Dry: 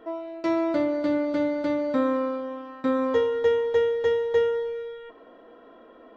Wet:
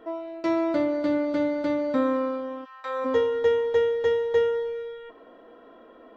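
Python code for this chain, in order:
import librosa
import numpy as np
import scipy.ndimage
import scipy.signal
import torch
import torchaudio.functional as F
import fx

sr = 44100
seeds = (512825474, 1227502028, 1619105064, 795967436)

y = fx.highpass(x, sr, hz=fx.line((2.64, 1300.0), (3.04, 430.0)), slope=24, at=(2.64, 3.04), fade=0.02)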